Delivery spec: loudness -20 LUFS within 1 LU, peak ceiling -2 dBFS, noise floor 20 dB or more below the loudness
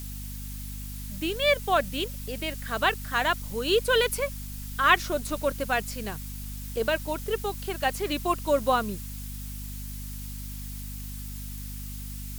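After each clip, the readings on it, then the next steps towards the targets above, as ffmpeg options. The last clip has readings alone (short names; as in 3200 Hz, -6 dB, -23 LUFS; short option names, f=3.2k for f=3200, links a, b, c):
hum 50 Hz; harmonics up to 250 Hz; hum level -35 dBFS; noise floor -37 dBFS; noise floor target -49 dBFS; loudness -28.5 LUFS; peak -6.0 dBFS; loudness target -20.0 LUFS
-> -af "bandreject=f=50:t=h:w=6,bandreject=f=100:t=h:w=6,bandreject=f=150:t=h:w=6,bandreject=f=200:t=h:w=6,bandreject=f=250:t=h:w=6"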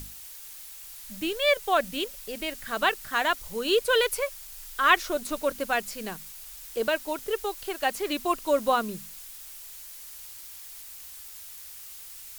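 hum none; noise floor -44 dBFS; noise floor target -47 dBFS
-> -af "afftdn=nr=6:nf=-44"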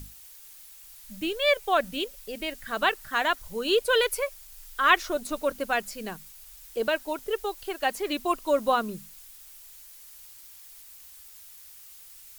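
noise floor -49 dBFS; loudness -27.0 LUFS; peak -6.0 dBFS; loudness target -20.0 LUFS
-> -af "volume=7dB,alimiter=limit=-2dB:level=0:latency=1"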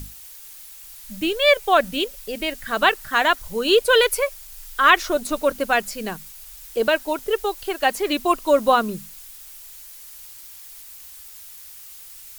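loudness -20.5 LUFS; peak -2.0 dBFS; noise floor -42 dBFS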